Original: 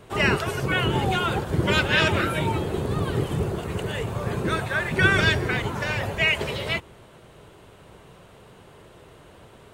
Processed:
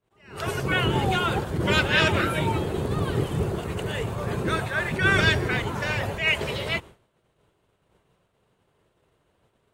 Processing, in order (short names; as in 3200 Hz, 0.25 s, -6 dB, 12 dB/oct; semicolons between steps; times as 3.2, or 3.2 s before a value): expander -36 dBFS; attack slew limiter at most 120 dB/s